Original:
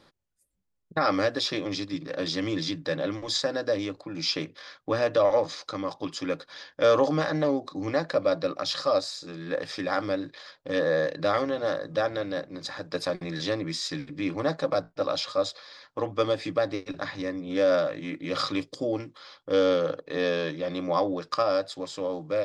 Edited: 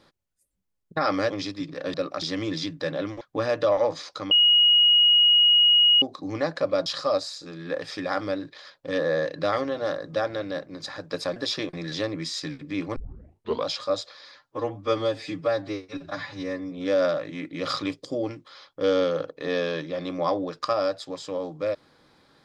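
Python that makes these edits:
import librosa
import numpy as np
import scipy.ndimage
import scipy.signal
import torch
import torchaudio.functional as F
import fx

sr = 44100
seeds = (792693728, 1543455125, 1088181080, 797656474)

y = fx.edit(x, sr, fx.move(start_s=1.3, length_s=0.33, to_s=13.17),
    fx.cut(start_s=3.26, length_s=1.48),
    fx.bleep(start_s=5.84, length_s=1.71, hz=2890.0, db=-14.0),
    fx.move(start_s=8.39, length_s=0.28, to_s=2.27),
    fx.tape_start(start_s=14.44, length_s=0.71),
    fx.stretch_span(start_s=15.84, length_s=1.57, factor=1.5), tone=tone)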